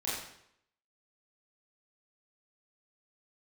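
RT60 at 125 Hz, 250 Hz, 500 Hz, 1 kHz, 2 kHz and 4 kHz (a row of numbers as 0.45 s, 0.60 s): 0.70 s, 0.70 s, 0.70 s, 0.70 s, 0.70 s, 0.65 s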